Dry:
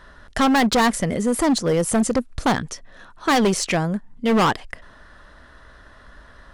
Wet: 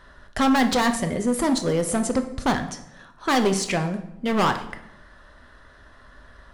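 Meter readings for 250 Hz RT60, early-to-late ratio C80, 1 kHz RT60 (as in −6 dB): 0.95 s, 14.0 dB, 0.75 s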